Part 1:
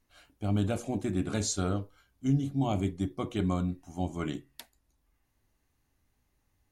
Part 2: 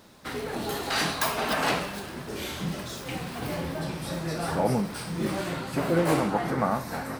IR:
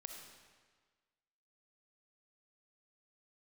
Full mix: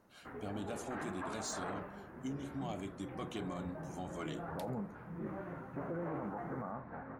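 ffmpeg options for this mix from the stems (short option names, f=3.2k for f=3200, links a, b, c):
-filter_complex "[0:a]acompressor=threshold=-31dB:ratio=6,highpass=f=380:p=1,asoftclip=type=tanh:threshold=-29dB,volume=-0.5dB[a];[1:a]lowpass=f=1.7k:w=0.5412,lowpass=f=1.7k:w=1.3066,volume=-13dB[b];[a][b]amix=inputs=2:normalize=0,alimiter=level_in=8dB:limit=-24dB:level=0:latency=1:release=20,volume=-8dB"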